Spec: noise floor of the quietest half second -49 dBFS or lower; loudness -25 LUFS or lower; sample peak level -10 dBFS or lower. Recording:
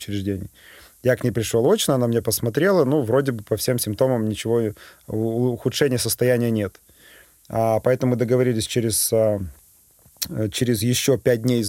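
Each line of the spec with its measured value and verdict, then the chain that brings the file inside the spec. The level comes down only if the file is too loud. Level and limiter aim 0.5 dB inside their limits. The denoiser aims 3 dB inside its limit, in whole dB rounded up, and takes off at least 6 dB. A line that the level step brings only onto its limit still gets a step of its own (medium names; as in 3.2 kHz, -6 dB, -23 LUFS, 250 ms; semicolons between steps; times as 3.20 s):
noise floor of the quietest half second -54 dBFS: pass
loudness -21.0 LUFS: fail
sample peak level -3.0 dBFS: fail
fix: trim -4.5 dB; peak limiter -10.5 dBFS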